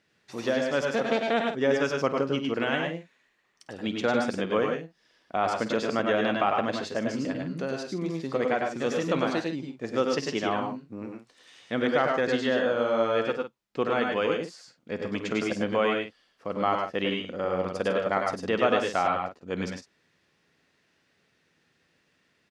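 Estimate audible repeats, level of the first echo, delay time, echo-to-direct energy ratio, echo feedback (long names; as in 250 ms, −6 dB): 3, −15.0 dB, 51 ms, −1.5 dB, repeats not evenly spaced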